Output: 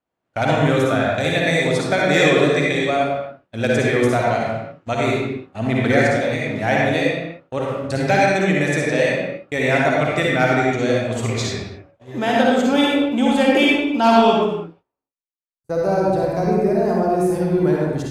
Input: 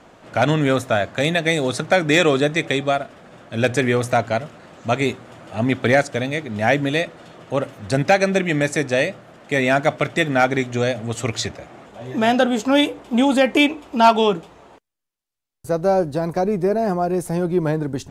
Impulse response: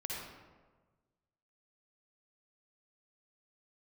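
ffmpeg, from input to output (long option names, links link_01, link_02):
-filter_complex "[0:a]agate=range=-33dB:threshold=-32dB:ratio=16:detection=peak[link_01];[1:a]atrim=start_sample=2205,afade=type=out:start_time=0.4:duration=0.01,atrim=end_sample=18081[link_02];[link_01][link_02]afir=irnorm=-1:irlink=0"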